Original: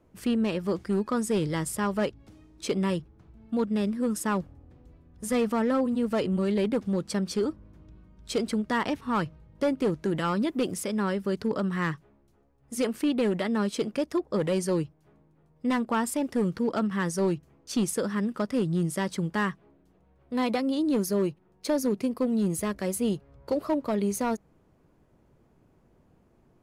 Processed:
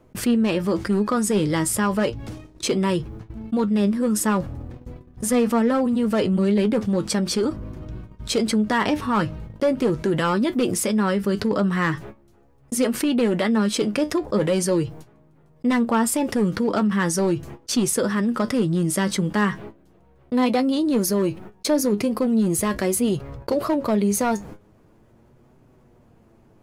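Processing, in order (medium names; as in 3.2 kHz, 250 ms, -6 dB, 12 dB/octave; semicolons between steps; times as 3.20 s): gate -50 dBFS, range -33 dB; flange 0.39 Hz, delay 7.8 ms, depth 2.2 ms, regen +54%; level flattener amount 50%; trim +7 dB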